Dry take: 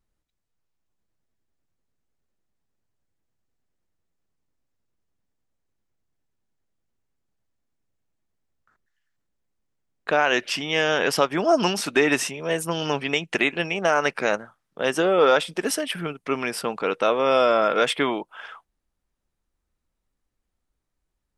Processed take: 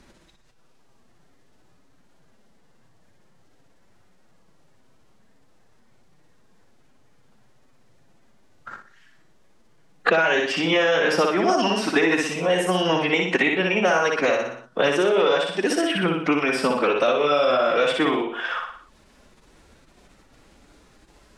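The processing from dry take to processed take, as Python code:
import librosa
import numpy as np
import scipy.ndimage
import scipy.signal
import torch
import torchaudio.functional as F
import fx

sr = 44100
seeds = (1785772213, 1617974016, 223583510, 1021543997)

y = fx.spec_quant(x, sr, step_db=15)
y = fx.air_absorb(y, sr, metres=57.0)
y = fx.echo_feedback(y, sr, ms=60, feedback_pct=40, wet_db=-3)
y = fx.pitch_keep_formants(y, sr, semitones=1.5)
y = fx.band_squash(y, sr, depth_pct=100)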